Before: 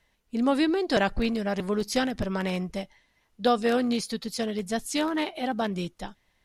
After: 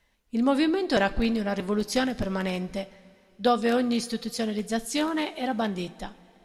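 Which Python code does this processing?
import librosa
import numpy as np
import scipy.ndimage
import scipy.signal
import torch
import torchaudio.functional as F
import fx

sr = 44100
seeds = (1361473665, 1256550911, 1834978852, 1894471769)

y = fx.rev_double_slope(x, sr, seeds[0], early_s=0.27, late_s=2.9, knee_db=-17, drr_db=11.5)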